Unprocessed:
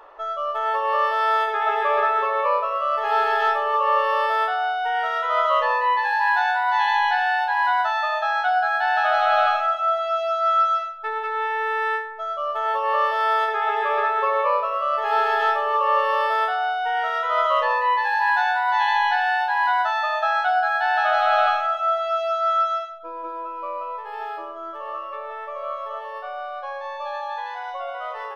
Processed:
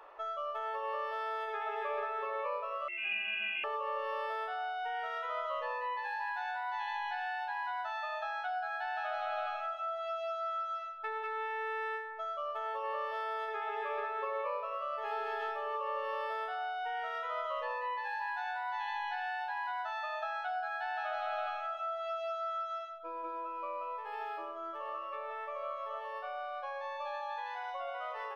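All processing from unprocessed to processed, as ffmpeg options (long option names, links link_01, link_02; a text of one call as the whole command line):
ffmpeg -i in.wav -filter_complex "[0:a]asettb=1/sr,asplit=3[link_01][link_02][link_03];[link_01]atrim=end=2.884[link_04];[link_02]atrim=start=2.88:end=3.64,asetpts=PTS-STARTPTS,afade=type=in:duration=0.004:curve=qsin,afade=type=out:start_time=0.756:duration=0.004:curve=qsin,equalizer=frequency=1300:width_type=o:width=0.96:gain=-14,lowpass=frequency=2800:width_type=q:width=0.5098,lowpass=frequency=2800:width_type=q:width=0.6013,lowpass=frequency=2800:width_type=q:width=0.9,lowpass=frequency=2800:width_type=q:width=2.563,afreqshift=-3300,highpass=47[link_05];[link_03]atrim=start=3.636[link_06];[link_04][link_05]acrossfade=duration=0.004:curve1=hsin:curve2=qsin[link_07];[link_07][link_06]acrossfade=duration=0.004:curve1=qsin:curve2=hsin,lowshelf=frequency=110:gain=-5,acrossover=split=420[link_08][link_09];[link_09]acompressor=threshold=-29dB:ratio=6[link_10];[link_08][link_10]amix=inputs=2:normalize=0,equalizer=frequency=2400:width=4.2:gain=5.5,volume=-7.5dB" out.wav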